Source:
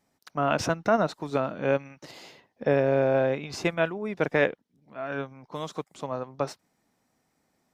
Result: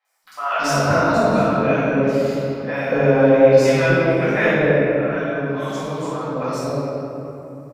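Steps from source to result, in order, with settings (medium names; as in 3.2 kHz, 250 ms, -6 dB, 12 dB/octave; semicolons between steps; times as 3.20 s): treble shelf 5.8 kHz +8 dB; three bands offset in time mids, highs, lows 50/240 ms, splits 710/3600 Hz; simulated room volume 150 m³, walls hard, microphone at 2.1 m; trim -3.5 dB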